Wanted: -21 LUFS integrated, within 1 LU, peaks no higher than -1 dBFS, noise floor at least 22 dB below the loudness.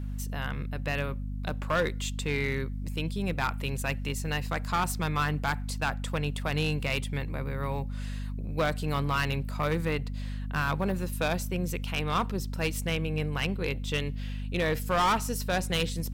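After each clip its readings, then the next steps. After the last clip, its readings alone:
clipped samples 1.1%; clipping level -21.0 dBFS; hum 50 Hz; highest harmonic 250 Hz; hum level -32 dBFS; loudness -30.5 LUFS; peak level -21.0 dBFS; loudness target -21.0 LUFS
-> clip repair -21 dBFS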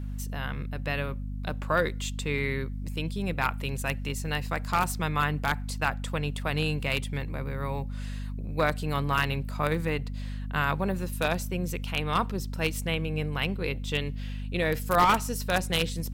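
clipped samples 0.0%; hum 50 Hz; highest harmonic 250 Hz; hum level -32 dBFS
-> hum notches 50/100/150/200/250 Hz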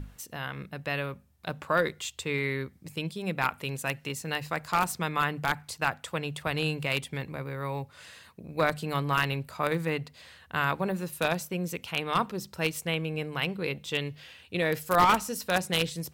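hum not found; loudness -30.0 LUFS; peak level -11.0 dBFS; loudness target -21.0 LUFS
-> trim +9 dB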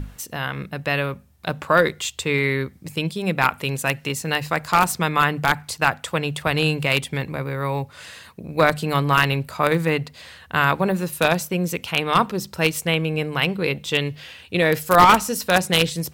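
loudness -21.0 LUFS; peak level -2.0 dBFS; noise floor -49 dBFS

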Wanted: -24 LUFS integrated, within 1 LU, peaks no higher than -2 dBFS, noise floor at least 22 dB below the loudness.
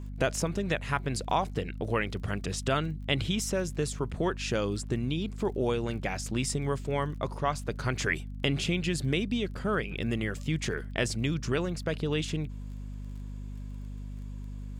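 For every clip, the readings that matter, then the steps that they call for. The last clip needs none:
tick rate 25 per s; hum 50 Hz; highest harmonic 250 Hz; hum level -36 dBFS; loudness -31.0 LUFS; peak level -11.0 dBFS; loudness target -24.0 LUFS
-> de-click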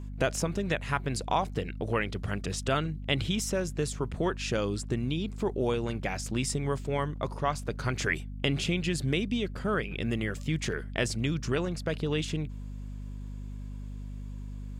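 tick rate 0 per s; hum 50 Hz; highest harmonic 250 Hz; hum level -36 dBFS
-> de-hum 50 Hz, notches 5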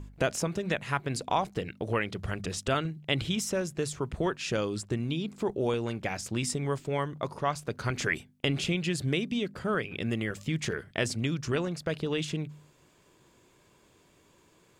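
hum not found; loudness -31.5 LUFS; peak level -11.0 dBFS; loudness target -24.0 LUFS
-> trim +7.5 dB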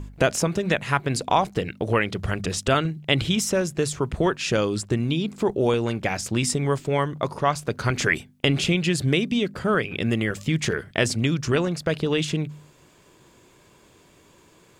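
loudness -24.0 LUFS; peak level -3.5 dBFS; noise floor -56 dBFS

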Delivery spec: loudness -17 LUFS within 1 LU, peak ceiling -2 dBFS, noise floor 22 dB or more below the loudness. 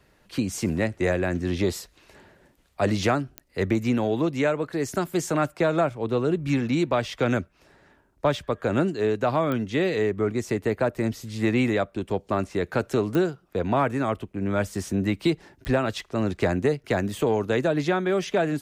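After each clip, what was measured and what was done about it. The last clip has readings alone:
clicks found 4; loudness -25.5 LUFS; peak level -11.0 dBFS; loudness target -17.0 LUFS
-> de-click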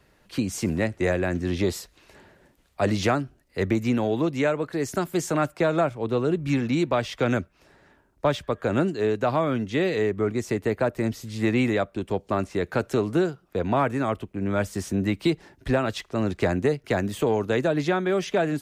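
clicks found 0; loudness -25.5 LUFS; peak level -11.0 dBFS; loudness target -17.0 LUFS
-> trim +8.5 dB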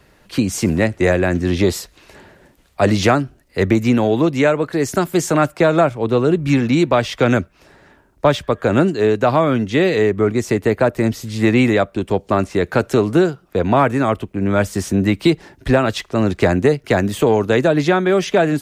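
loudness -17.0 LUFS; peak level -2.5 dBFS; noise floor -54 dBFS

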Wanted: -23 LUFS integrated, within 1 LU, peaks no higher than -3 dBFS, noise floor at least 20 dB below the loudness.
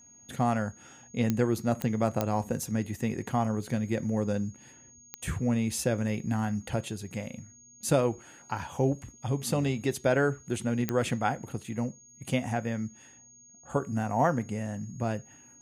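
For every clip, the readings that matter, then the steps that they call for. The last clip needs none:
clicks found 5; steady tone 6.6 kHz; tone level -53 dBFS; loudness -30.5 LUFS; peak level -12.5 dBFS; loudness target -23.0 LUFS
-> de-click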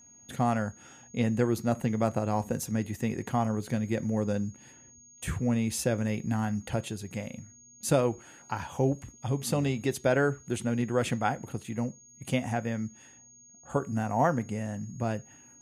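clicks found 0; steady tone 6.6 kHz; tone level -53 dBFS
-> band-stop 6.6 kHz, Q 30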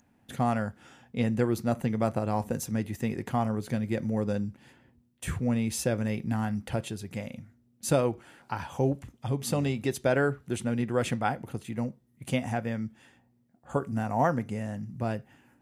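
steady tone not found; loudness -30.5 LUFS; peak level -12.5 dBFS; loudness target -23.0 LUFS
-> trim +7.5 dB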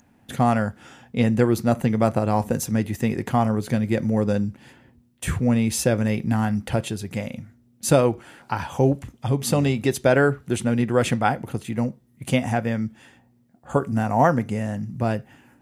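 loudness -23.0 LUFS; peak level -5.0 dBFS; noise floor -59 dBFS

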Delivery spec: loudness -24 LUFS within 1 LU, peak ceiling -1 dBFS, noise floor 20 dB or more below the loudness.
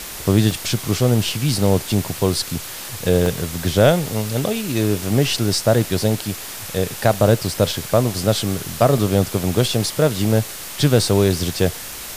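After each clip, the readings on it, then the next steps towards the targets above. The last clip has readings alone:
dropouts 6; longest dropout 1.2 ms; noise floor -32 dBFS; noise floor target -39 dBFS; loudness -19.0 LUFS; peak level -1.5 dBFS; loudness target -24.0 LUFS
-> interpolate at 0.51/1.63/3.26/7.14/8.98/11.92 s, 1.2 ms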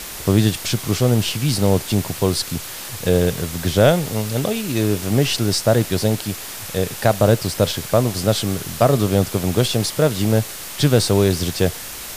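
dropouts 0; noise floor -32 dBFS; noise floor target -39 dBFS
-> noise reduction 7 dB, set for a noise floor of -32 dBFS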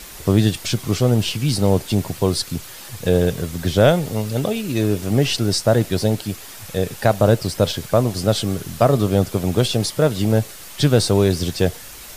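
noise floor -38 dBFS; noise floor target -40 dBFS
-> noise reduction 6 dB, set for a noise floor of -38 dBFS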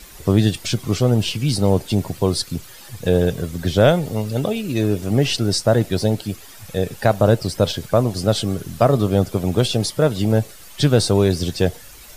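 noise floor -41 dBFS; loudness -19.5 LUFS; peak level -2.0 dBFS; loudness target -24.0 LUFS
-> trim -4.5 dB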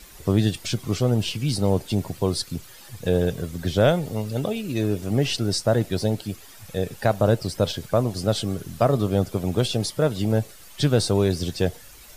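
loudness -24.0 LUFS; peak level -6.5 dBFS; noise floor -46 dBFS

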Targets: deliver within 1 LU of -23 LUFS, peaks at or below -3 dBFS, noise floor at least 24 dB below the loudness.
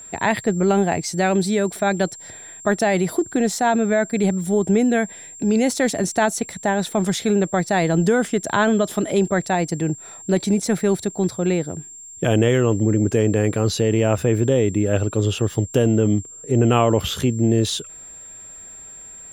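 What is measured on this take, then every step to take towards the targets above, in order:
steady tone 7.4 kHz; tone level -37 dBFS; loudness -20.0 LUFS; peak level -2.5 dBFS; loudness target -23.0 LUFS
-> band-stop 7.4 kHz, Q 30; trim -3 dB

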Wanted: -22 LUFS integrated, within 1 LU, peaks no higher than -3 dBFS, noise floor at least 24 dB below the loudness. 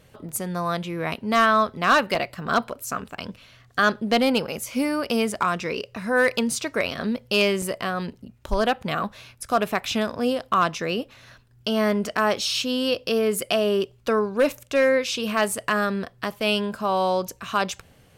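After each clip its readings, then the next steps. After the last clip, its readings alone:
clipped samples 0.2%; clipping level -11.5 dBFS; dropouts 3; longest dropout 2.1 ms; loudness -24.0 LUFS; peak level -11.5 dBFS; loudness target -22.0 LUFS
-> clip repair -11.5 dBFS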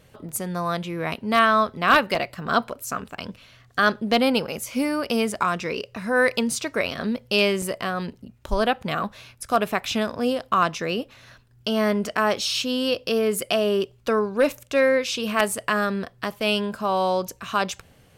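clipped samples 0.0%; dropouts 3; longest dropout 2.1 ms
-> interpolate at 0.29/2.15/7.62 s, 2.1 ms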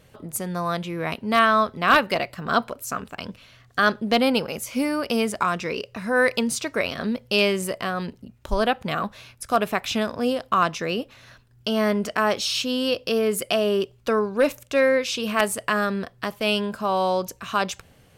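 dropouts 0; loudness -23.5 LUFS; peak level -2.5 dBFS; loudness target -22.0 LUFS
-> trim +1.5 dB; peak limiter -3 dBFS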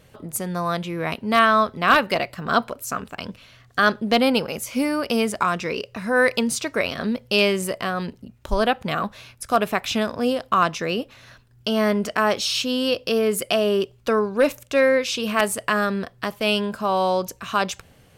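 loudness -22.0 LUFS; peak level -3.0 dBFS; noise floor -54 dBFS

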